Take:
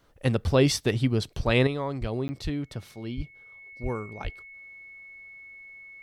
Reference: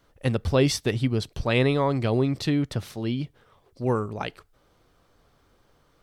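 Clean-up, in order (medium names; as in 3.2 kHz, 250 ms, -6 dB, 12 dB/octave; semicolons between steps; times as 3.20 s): band-stop 2.2 kHz, Q 30; de-plosive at 1.45/2.00/2.43/3.16/3.82/4.23 s; interpolate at 2.28 s, 10 ms; trim 0 dB, from 1.67 s +7.5 dB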